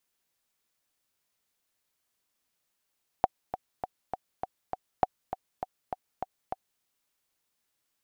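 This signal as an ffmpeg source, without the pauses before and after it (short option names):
-f lavfi -i "aevalsrc='pow(10,(-8-11*gte(mod(t,6*60/201),60/201))/20)*sin(2*PI*751*mod(t,60/201))*exp(-6.91*mod(t,60/201)/0.03)':d=3.58:s=44100"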